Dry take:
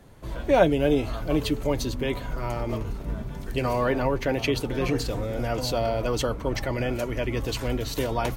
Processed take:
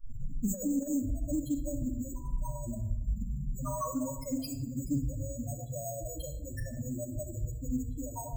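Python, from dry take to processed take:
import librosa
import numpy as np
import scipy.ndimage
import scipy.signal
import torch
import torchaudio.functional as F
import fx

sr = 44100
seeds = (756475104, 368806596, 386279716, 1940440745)

y = fx.tape_start_head(x, sr, length_s=0.7)
y = fx.low_shelf(y, sr, hz=97.0, db=-8.0)
y = 10.0 ** (-15.0 / 20.0) * np.tanh(y / 10.0 ** (-15.0 / 20.0))
y = y + 10.0 ** (-20.0 / 20.0) * np.pad(y, (int(826 * sr / 1000.0), 0))[:len(y)]
y = fx.spec_topn(y, sr, count=2)
y = np.repeat(scipy.signal.resample_poly(y, 1, 6), 6)[:len(y)]
y = fx.fixed_phaser(y, sr, hz=980.0, stages=4)
y = fx.room_shoebox(y, sr, seeds[0], volume_m3=2700.0, walls='furnished', distance_m=2.4)
y = fx.over_compress(y, sr, threshold_db=-31.0, ratio=-0.5)
y = fx.band_shelf(y, sr, hz=580.0, db=-10.0, octaves=1.3)
y = fx.doppler_dist(y, sr, depth_ms=0.1)
y = y * 10.0 ** (4.0 / 20.0)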